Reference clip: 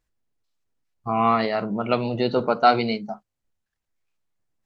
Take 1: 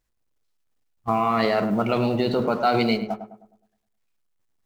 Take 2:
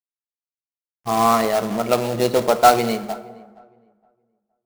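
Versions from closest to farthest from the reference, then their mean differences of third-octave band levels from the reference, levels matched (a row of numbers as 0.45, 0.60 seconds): 1, 2; 6.0, 10.0 decibels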